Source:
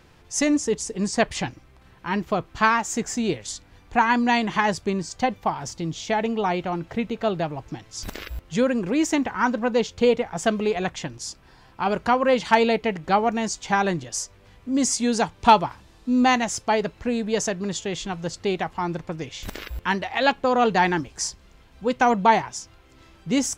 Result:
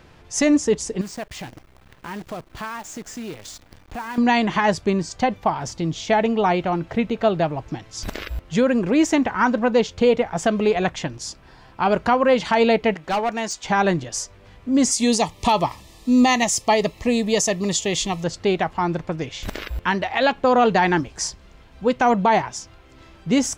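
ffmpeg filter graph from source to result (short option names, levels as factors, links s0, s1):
-filter_complex "[0:a]asettb=1/sr,asplit=3[s0][s1][s2];[s0]atrim=end=1.014[s3];[s1]atrim=start=1.01:end=4.18,asetpts=PTS-STARTPTS,afade=t=in:d=0.004:c=qsin,afade=t=out:st=3.166:d=0.004:c=qsin,acompressor=threshold=0.0126:ratio=3:attack=3.2:release=140:knee=1:detection=peak,acrusher=bits=8:dc=4:mix=0:aa=0.000001[s4];[s2]atrim=start=4.176[s5];[s3][s4]acrossfade=d=0.004:c1=hsin:c2=qsin[s6];[s6][s5]acrossfade=d=0.004:c1=qsin:c2=hsin,asettb=1/sr,asplit=3[s7][s8][s9];[s7]atrim=end=12.944[s10];[s8]atrim=start=12.94:end=13.64,asetpts=PTS-STARTPTS,afade=t=in:d=0.004:c=qsin,afade=t=out:st=0.696:d=0.004:c=qsin,lowshelf=f=400:g=-11.5,volume=14.1,asoftclip=hard,volume=0.0708[s11];[s9]atrim=start=13.636[s12];[s10][s11]acrossfade=d=0.004:c1=hsin:c2=qsin[s13];[s13][s12]acrossfade=d=0.004:c1=qsin:c2=hsin,asettb=1/sr,asplit=3[s14][s15][s16];[s14]atrim=end=14.914[s17];[s15]atrim=start=14.91:end=18.24,asetpts=PTS-STARTPTS,afade=t=in:d=0.004:c=qsin,afade=t=out:st=3.326:d=0.004:c=qsin,asuperstop=centerf=1500:order=8:qfactor=3.8,aemphasis=mode=production:type=75kf[s18];[s16]atrim=start=18.236[s19];[s17][s18]acrossfade=d=0.004:c1=hsin:c2=qsin[s20];[s20][s19]acrossfade=d=0.004:c1=qsin:c2=hsin,equalizer=f=630:w=8:g=3.5,alimiter=limit=0.237:level=0:latency=1:release=84,equalizer=f=14000:w=0.31:g=-6,volume=1.68"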